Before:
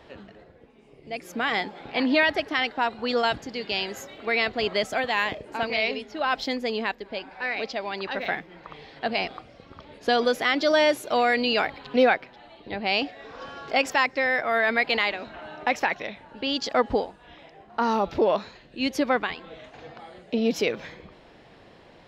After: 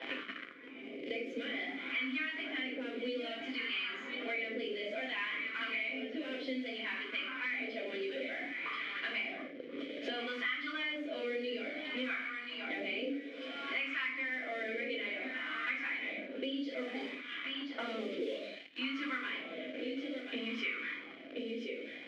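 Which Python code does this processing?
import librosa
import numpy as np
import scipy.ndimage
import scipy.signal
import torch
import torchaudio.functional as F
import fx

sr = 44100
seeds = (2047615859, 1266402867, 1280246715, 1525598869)

p1 = fx.tilt_shelf(x, sr, db=-8.0, hz=820.0)
p2 = fx.room_shoebox(p1, sr, seeds[0], volume_m3=320.0, walls='furnished', distance_m=4.9)
p3 = fx.fuzz(p2, sr, gain_db=32.0, gate_db=-38.0)
p4 = p2 + F.gain(torch.from_numpy(p3), -4.0).numpy()
p5 = fx.mod_noise(p4, sr, seeds[1], snr_db=11)
p6 = fx.vowel_filter(p5, sr, vowel='i')
p7 = p6 + fx.echo_single(p6, sr, ms=1032, db=-12.0, dry=0)
p8 = fx.wah_lfo(p7, sr, hz=0.59, low_hz=490.0, high_hz=1200.0, q=4.9)
p9 = fx.band_squash(p8, sr, depth_pct=100)
y = F.gain(torch.from_numpy(p9), 4.5).numpy()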